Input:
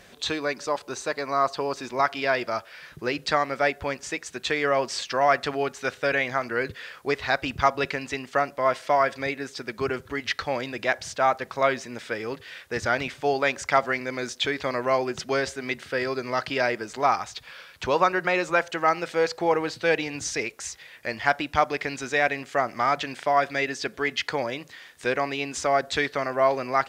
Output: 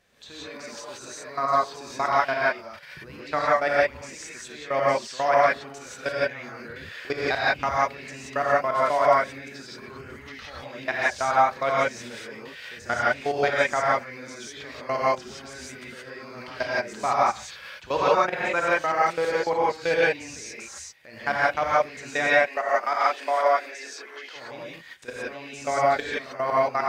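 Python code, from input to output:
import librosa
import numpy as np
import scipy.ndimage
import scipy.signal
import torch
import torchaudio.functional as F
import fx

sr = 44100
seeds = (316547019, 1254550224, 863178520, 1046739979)

y = fx.highpass(x, sr, hz=360.0, slope=24, at=(22.29, 24.36))
y = fx.level_steps(y, sr, step_db=22)
y = fx.rev_gated(y, sr, seeds[0], gate_ms=200, shape='rising', drr_db=-7.0)
y = y * 10.0 ** (-2.0 / 20.0)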